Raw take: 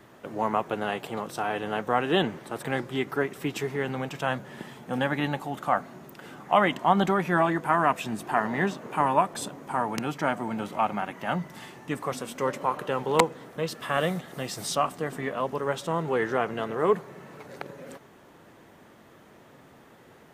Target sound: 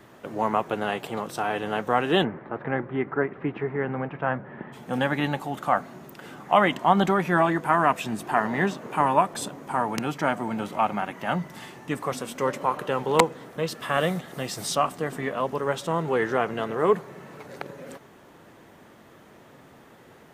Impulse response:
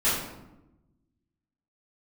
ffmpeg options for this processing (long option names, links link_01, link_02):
-filter_complex "[0:a]asplit=3[link_01][link_02][link_03];[link_01]afade=type=out:start_time=2.23:duration=0.02[link_04];[link_02]lowpass=frequency=2000:width=0.5412,lowpass=frequency=2000:width=1.3066,afade=type=in:start_time=2.23:duration=0.02,afade=type=out:start_time=4.72:duration=0.02[link_05];[link_03]afade=type=in:start_time=4.72:duration=0.02[link_06];[link_04][link_05][link_06]amix=inputs=3:normalize=0,volume=2dB"